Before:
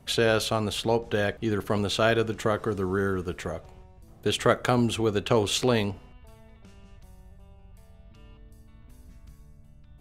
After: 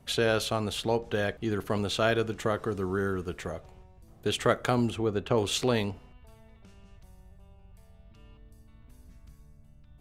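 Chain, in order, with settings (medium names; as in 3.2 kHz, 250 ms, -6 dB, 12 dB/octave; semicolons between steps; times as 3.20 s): 4.90–5.38 s: treble shelf 2.6 kHz -10.5 dB; trim -3 dB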